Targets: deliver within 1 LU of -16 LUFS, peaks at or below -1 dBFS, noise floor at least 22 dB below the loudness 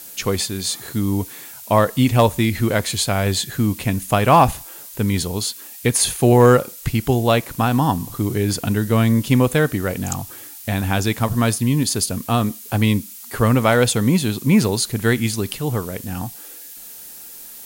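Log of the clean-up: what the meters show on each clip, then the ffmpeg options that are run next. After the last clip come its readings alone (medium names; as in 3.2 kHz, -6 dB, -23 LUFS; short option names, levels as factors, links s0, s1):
noise floor -38 dBFS; noise floor target -41 dBFS; loudness -19.0 LUFS; peak level -3.0 dBFS; loudness target -16.0 LUFS
-> -af "afftdn=nr=6:nf=-38"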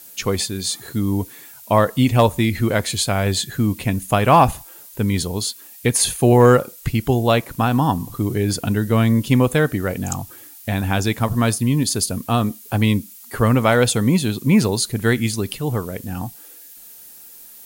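noise floor -42 dBFS; loudness -19.0 LUFS; peak level -3.0 dBFS; loudness target -16.0 LUFS
-> -af "volume=1.41,alimiter=limit=0.891:level=0:latency=1"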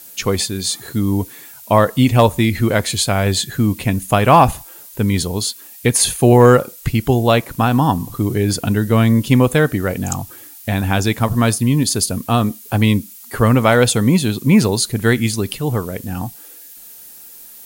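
loudness -16.0 LUFS; peak level -1.0 dBFS; noise floor -39 dBFS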